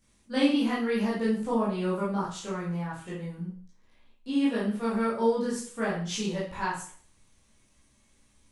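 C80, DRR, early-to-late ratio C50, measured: 8.5 dB, -8.5 dB, 3.0 dB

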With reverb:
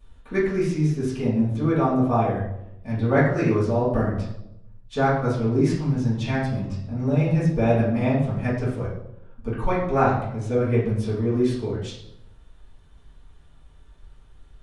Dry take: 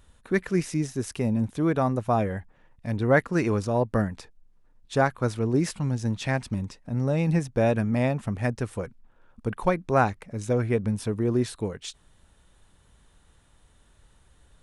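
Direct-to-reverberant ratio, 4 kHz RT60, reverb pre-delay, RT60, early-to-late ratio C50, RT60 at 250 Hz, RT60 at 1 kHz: -11.0 dB, 0.60 s, 3 ms, 0.85 s, 3.0 dB, 1.0 s, 0.75 s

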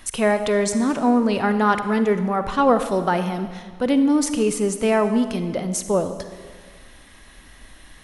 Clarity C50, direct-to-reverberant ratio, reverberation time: 10.0 dB, 9.5 dB, 1.7 s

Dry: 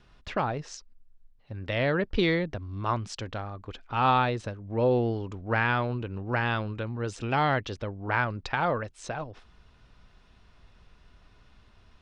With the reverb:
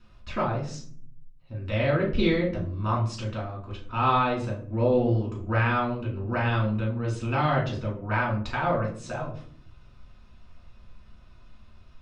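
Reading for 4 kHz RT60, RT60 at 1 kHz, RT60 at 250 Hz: 0.30 s, 0.45 s, 1.0 s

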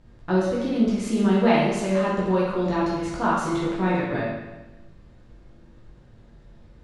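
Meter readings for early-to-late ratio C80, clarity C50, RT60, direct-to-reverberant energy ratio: 3.0 dB, -0.5 dB, 1.1 s, -7.5 dB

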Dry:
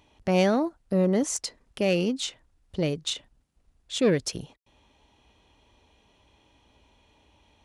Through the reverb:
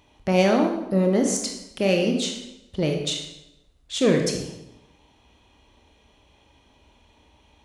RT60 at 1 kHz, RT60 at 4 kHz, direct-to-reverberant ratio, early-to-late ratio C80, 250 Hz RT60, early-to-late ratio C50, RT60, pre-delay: 0.85 s, 0.75 s, 2.0 dB, 7.5 dB, 1.0 s, 5.0 dB, 0.90 s, 22 ms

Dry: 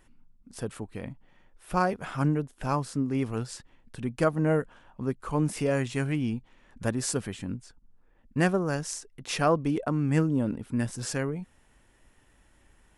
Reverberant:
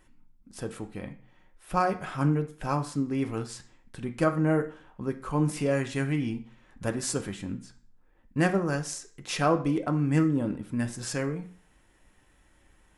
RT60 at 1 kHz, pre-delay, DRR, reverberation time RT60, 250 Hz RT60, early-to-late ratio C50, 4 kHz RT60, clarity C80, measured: 0.45 s, 3 ms, 5.0 dB, 0.45 s, 0.45 s, 13.0 dB, 0.45 s, 17.0 dB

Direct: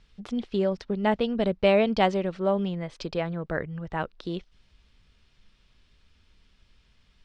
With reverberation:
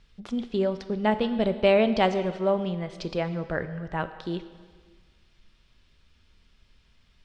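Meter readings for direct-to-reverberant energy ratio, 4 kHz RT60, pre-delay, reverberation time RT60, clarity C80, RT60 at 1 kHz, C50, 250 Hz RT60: 10.0 dB, 1.5 s, 3 ms, 1.6 s, 13.0 dB, 1.6 s, 12.0 dB, 1.5 s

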